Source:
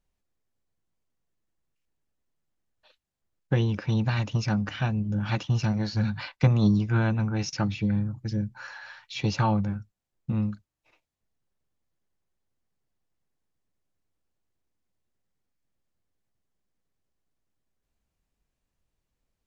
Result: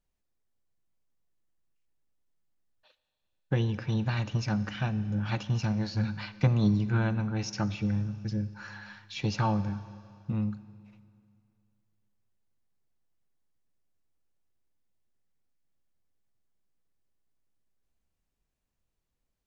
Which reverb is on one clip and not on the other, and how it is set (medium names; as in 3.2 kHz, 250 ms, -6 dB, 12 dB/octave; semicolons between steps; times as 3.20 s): Schroeder reverb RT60 2.4 s, combs from 30 ms, DRR 14.5 dB; trim -3.5 dB